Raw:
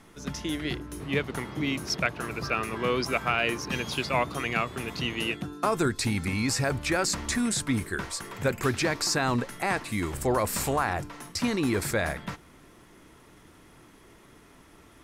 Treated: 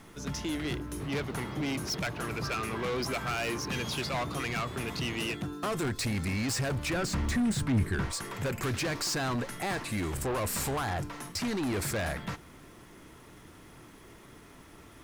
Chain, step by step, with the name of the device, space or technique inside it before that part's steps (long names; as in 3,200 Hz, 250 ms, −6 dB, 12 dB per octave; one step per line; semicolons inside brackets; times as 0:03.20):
open-reel tape (soft clipping −30 dBFS, distortion −7 dB; parametric band 110 Hz +2.5 dB 0.99 octaves; white noise bed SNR 39 dB)
0:06.93–0:08.13: bass and treble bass +8 dB, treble −6 dB
level +1.5 dB